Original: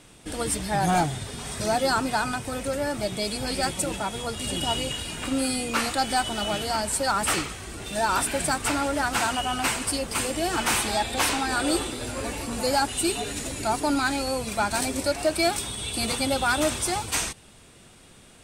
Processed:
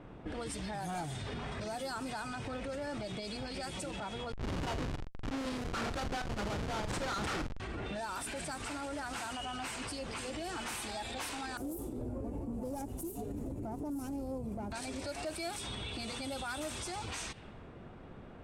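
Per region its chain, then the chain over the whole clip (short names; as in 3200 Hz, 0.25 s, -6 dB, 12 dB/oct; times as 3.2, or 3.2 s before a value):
4.32–7.6 bell 1400 Hz +7.5 dB 0.44 oct + Schmitt trigger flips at -23.5 dBFS + doubler 44 ms -11 dB
11.57–14.72 self-modulated delay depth 0.15 ms + EQ curve 310 Hz 0 dB, 950 Hz -12 dB, 1700 Hz -26 dB, 3900 Hz -27 dB, 12000 Hz +6 dB
whole clip: low-pass opened by the level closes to 1100 Hz, open at -20 dBFS; compressor, threshold -34 dBFS; limiter -35.5 dBFS; gain +3.5 dB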